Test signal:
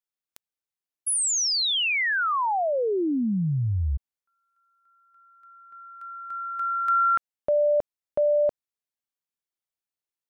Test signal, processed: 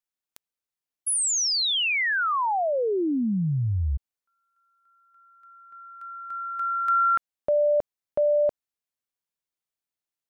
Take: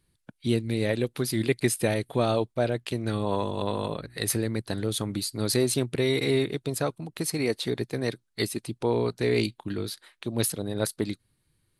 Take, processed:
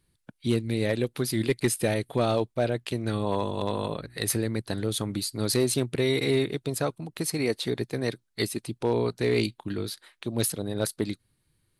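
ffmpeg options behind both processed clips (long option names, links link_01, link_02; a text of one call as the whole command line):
ffmpeg -i in.wav -af "asoftclip=type=hard:threshold=-14.5dB" out.wav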